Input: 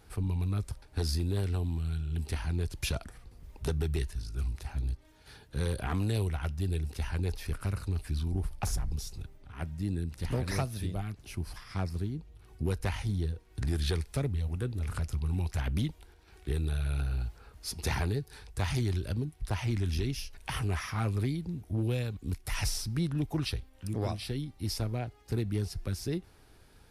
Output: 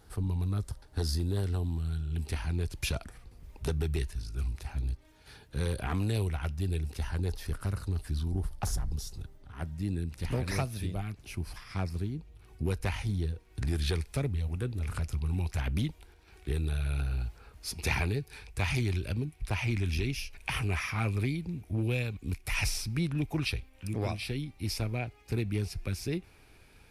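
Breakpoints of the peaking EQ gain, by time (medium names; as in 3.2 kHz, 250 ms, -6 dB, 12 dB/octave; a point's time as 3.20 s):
peaking EQ 2.4 kHz 0.32 oct
-7.5 dB
from 2.11 s +2.5 dB
from 6.99 s -6 dB
from 9.76 s +4.5 dB
from 17.75 s +12 dB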